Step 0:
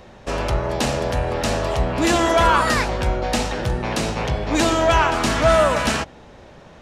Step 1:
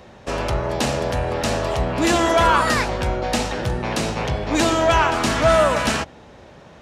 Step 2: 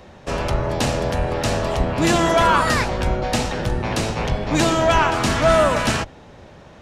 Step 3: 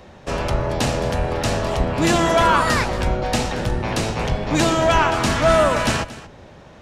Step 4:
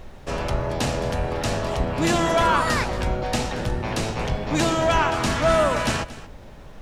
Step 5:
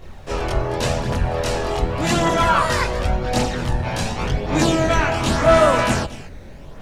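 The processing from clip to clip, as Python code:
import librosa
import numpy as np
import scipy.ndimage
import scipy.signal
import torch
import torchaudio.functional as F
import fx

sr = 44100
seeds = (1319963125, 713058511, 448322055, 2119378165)

y1 = scipy.signal.sosfilt(scipy.signal.butter(2, 52.0, 'highpass', fs=sr, output='sos'), x)
y2 = fx.octave_divider(y1, sr, octaves=1, level_db=-2.0)
y3 = y2 + 10.0 ** (-17.0 / 20.0) * np.pad(y2, (int(230 * sr / 1000.0), 0))[:len(y2)]
y4 = fx.dmg_noise_colour(y3, sr, seeds[0], colour='brown', level_db=-38.0)
y4 = y4 * librosa.db_to_amplitude(-3.5)
y5 = fx.chorus_voices(y4, sr, voices=2, hz=0.44, base_ms=23, depth_ms=1.4, mix_pct=60)
y5 = y5 * librosa.db_to_amplitude(5.5)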